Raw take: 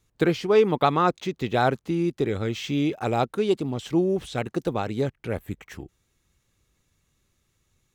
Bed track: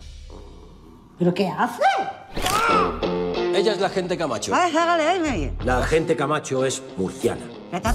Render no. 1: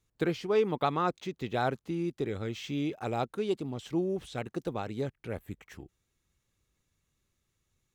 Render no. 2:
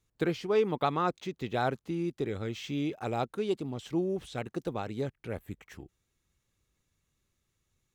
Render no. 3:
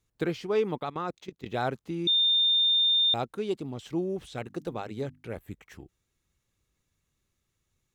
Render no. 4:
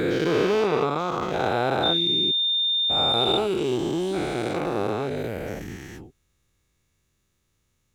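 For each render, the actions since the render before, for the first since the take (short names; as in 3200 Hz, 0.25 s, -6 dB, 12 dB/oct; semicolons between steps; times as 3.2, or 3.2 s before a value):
gain -8 dB
nothing audible
0.8–1.46 level quantiser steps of 16 dB; 2.07–3.14 bleep 3620 Hz -20 dBFS; 4.38–5.39 notches 50/100/150/200/250/300 Hz
spectral dilation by 0.48 s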